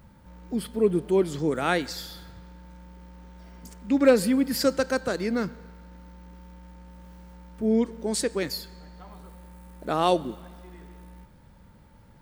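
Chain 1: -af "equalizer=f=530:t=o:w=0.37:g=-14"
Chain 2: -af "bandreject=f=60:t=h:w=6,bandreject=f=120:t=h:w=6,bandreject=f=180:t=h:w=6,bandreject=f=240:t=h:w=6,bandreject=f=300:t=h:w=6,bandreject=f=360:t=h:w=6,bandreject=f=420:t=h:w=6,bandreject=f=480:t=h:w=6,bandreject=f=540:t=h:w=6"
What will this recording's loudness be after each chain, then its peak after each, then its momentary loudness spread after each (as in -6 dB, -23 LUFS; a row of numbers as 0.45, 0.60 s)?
-28.0, -26.0 LUFS; -11.0, -7.0 dBFS; 23, 14 LU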